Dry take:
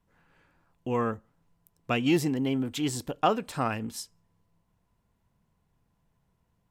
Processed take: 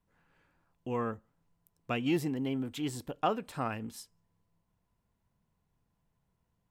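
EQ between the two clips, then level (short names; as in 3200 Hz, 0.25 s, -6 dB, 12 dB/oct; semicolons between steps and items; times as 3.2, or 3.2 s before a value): dynamic EQ 6200 Hz, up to -5 dB, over -48 dBFS, Q 0.94; -5.5 dB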